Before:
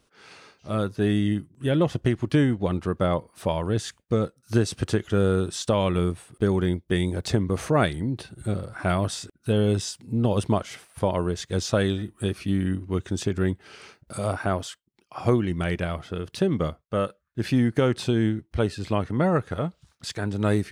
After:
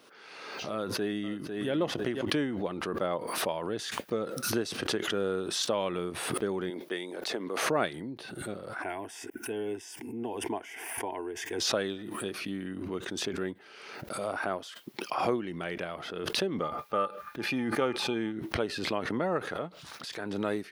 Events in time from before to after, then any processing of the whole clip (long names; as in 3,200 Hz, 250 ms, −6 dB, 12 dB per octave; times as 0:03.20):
0:00.73–0:01.71: delay throw 500 ms, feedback 15%, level −14 dB
0:06.70–0:07.63: high-pass filter 330 Hz
0:08.82–0:11.60: phaser with its sweep stopped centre 830 Hz, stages 8
0:16.62–0:18.32: hollow resonant body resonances 850/1,200/2,400 Hz, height 16 dB, ringing for 100 ms
whole clip: high-pass filter 290 Hz 12 dB per octave; parametric band 7,800 Hz −9 dB 0.72 octaves; background raised ahead of every attack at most 36 dB per second; level −6 dB